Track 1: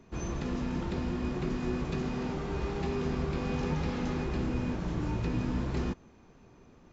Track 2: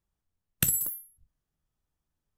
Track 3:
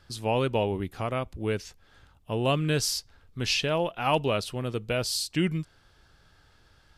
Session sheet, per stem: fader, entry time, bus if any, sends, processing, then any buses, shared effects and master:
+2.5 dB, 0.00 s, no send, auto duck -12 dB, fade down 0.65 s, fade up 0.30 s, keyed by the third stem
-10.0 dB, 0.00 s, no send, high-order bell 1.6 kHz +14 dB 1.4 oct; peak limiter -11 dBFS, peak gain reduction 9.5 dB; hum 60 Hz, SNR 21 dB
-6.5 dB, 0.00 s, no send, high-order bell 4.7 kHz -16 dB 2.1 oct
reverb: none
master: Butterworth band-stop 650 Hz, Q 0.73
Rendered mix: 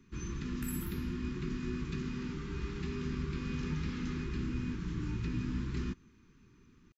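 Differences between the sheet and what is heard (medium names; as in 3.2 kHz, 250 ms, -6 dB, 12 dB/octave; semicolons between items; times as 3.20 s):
stem 1 +2.5 dB -> -3.5 dB; stem 2 -10.0 dB -> -18.5 dB; stem 3: muted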